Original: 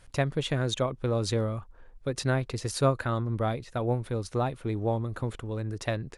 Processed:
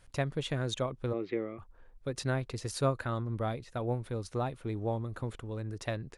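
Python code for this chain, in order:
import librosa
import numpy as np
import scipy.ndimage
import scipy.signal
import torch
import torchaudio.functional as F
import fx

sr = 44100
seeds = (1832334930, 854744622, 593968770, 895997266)

y = fx.cabinet(x, sr, low_hz=180.0, low_slope=24, high_hz=2500.0, hz=(210.0, 360.0, 580.0, 950.0, 1500.0, 2100.0), db=(-5, 8, -5, -10, -8, 10), at=(1.12, 1.58), fade=0.02)
y = y * librosa.db_to_amplitude(-5.0)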